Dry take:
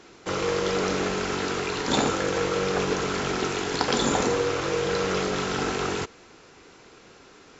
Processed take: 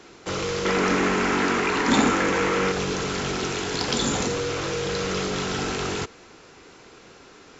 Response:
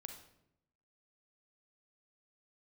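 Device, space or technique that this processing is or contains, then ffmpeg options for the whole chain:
one-band saturation: -filter_complex "[0:a]acrossover=split=240|2400[s0][s1][s2];[s1]asoftclip=type=tanh:threshold=0.0355[s3];[s0][s3][s2]amix=inputs=3:normalize=0,asettb=1/sr,asplit=3[s4][s5][s6];[s4]atrim=end=0.654[s7];[s5]atrim=start=0.65:end=2.72,asetpts=PTS-STARTPTS,afade=t=in:d=0.004:c=qsin,afade=t=out:st=2.066:d=0.004:c=qsin,equalizer=f=125:t=o:w=1:g=-6,equalizer=f=250:t=o:w=1:g=10,equalizer=f=1000:t=o:w=1:g=7,equalizer=f=2000:t=o:w=1:g=8,equalizer=f=4000:t=o:w=1:g=-4[s8];[s6]atrim=start=2.716[s9];[s7][s8]acrossfade=d=0.004:c1=hsin:c2=qsin[s10];[s10][s9]acrossfade=d=0.004:c1=qsin:c2=hsin,volume=1.33"

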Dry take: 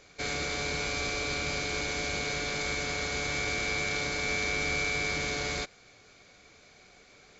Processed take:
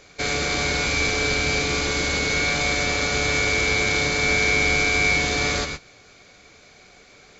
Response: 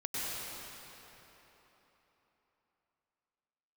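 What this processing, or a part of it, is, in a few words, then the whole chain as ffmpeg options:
keyed gated reverb: -filter_complex "[0:a]asplit=3[s0][s1][s2];[1:a]atrim=start_sample=2205[s3];[s1][s3]afir=irnorm=-1:irlink=0[s4];[s2]apad=whole_len=326212[s5];[s4][s5]sidechaingate=range=0.0224:threshold=0.00447:ratio=16:detection=peak,volume=0.398[s6];[s0][s6]amix=inputs=2:normalize=0,volume=2.11"

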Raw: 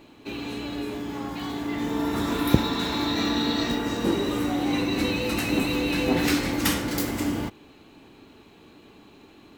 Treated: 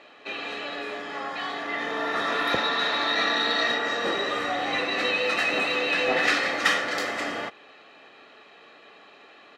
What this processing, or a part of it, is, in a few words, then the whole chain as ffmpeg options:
intercom: -filter_complex "[0:a]highpass=490,lowpass=4300,equalizer=f=1700:t=o:w=0.41:g=7.5,asoftclip=type=tanh:threshold=0.168,asettb=1/sr,asplit=3[s0][s1][s2];[s0]atrim=end=3.924[s3];[s1]atrim=start=3.92:end=4.79,asetpts=PTS-STARTPTS,afade=t=in:d=0.004:c=qsin,afade=t=out:st=0.866:d=0.004:c=qsin,asubboost=boost=7:cutoff=170[s4];[s2]atrim=start=4.786[s5];[s3][s4]acrossfade=d=0.004:c1=hsin:c2=qsin[s6];[s6][s5]acrossfade=d=0.004:c1=qsin:c2=hsin,aecho=1:1:1.6:0.51,asettb=1/sr,asplit=3[s7][s8][s9];[s7]atrim=end=1.544[s10];[s8]atrim=start=1.54:end=3.31,asetpts=PTS-STARTPTS,afade=t=in:d=0.004:c=qsin,afade=t=out:st=1.766:d=0.004:c=qsin,bandreject=f=7500:w=12[s11];[s9]atrim=start=3.306[s12];[s10][s11]acrossfade=d=0.004:c1=hsin:c2=qsin[s13];[s13][s12]acrossfade=d=0.004:c1=qsin:c2=hsin,volume=1.58"

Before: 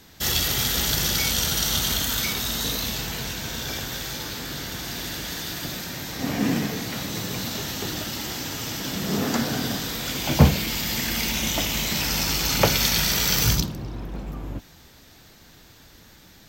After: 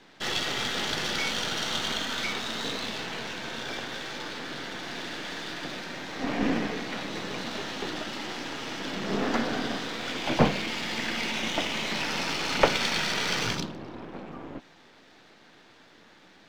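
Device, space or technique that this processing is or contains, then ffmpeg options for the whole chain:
crystal radio: -af "highpass=260,lowpass=3100,aeval=exprs='if(lt(val(0),0),0.447*val(0),val(0))':c=same,volume=1.33"

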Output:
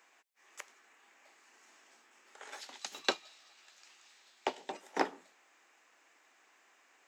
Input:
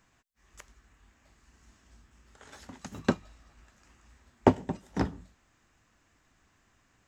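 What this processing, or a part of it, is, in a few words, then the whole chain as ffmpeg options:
laptop speaker: -filter_complex "[0:a]highpass=f=370:w=0.5412,highpass=f=370:w=1.3066,equalizer=f=820:t=o:w=0.25:g=4,equalizer=f=2300:t=o:w=0.57:g=5,alimiter=limit=0.211:level=0:latency=1:release=238,asettb=1/sr,asplit=3[s0][s1][s2];[s0]atrim=end=2.614[s3];[s1]atrim=start=2.61:end=4.72,asetpts=PTS-STARTPTS,afade=t=in:d=0.004:c=qsin,afade=t=out:st=2.106:d=0.004:c=qsin,equalizer=f=250:t=o:w=1:g=-7,equalizer=f=500:t=o:w=1:g=-5,equalizer=f=1000:t=o:w=1:g=-4,equalizer=f=2000:t=o:w=1:g=-4,equalizer=f=4000:t=o:w=1:g=10[s4];[s2]atrim=start=4.716[s5];[s3][s4]acrossfade=d=0.004:c1=hsin:c2=qsin[s6];[s6][s5]acrossfade=d=0.004:c1=qsin:c2=hsin,volume=1.26"

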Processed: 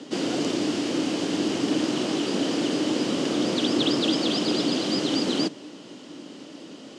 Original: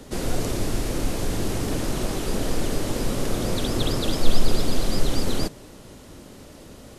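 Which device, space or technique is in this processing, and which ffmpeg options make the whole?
television speaker: -af "highpass=f=170:w=0.5412,highpass=f=170:w=1.3066,equalizer=f=300:t=q:w=4:g=10,equalizer=f=3000:t=q:w=4:g=9,equalizer=f=4800:t=q:w=4:g=4,lowpass=f=7400:w=0.5412,lowpass=f=7400:w=1.3066"

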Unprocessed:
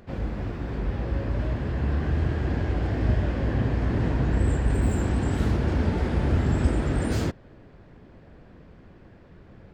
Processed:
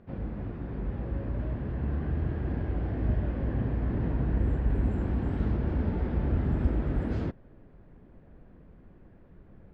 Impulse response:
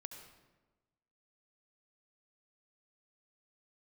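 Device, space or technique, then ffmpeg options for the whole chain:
phone in a pocket: -af "asubboost=boost=2.5:cutoff=59,lowpass=3700,equalizer=f=180:t=o:w=1.7:g=4.5,highshelf=f=2300:g=-8.5,volume=0.447"

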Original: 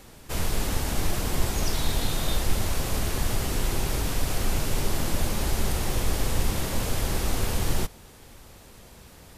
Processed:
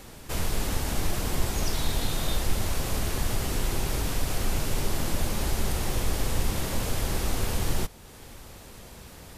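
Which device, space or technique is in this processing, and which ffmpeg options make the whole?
parallel compression: -filter_complex "[0:a]asplit=2[s0][s1];[s1]acompressor=threshold=0.0112:ratio=6,volume=0.891[s2];[s0][s2]amix=inputs=2:normalize=0,volume=0.75"

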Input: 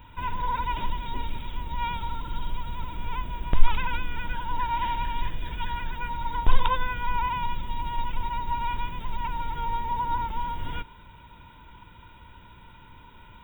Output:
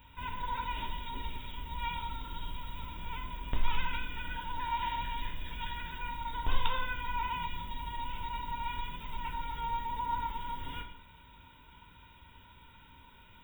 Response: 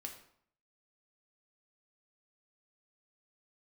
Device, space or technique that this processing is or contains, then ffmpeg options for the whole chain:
bathroom: -filter_complex "[0:a]highshelf=f=2300:g=9[s0];[1:a]atrim=start_sample=2205[s1];[s0][s1]afir=irnorm=-1:irlink=0,volume=0.562"

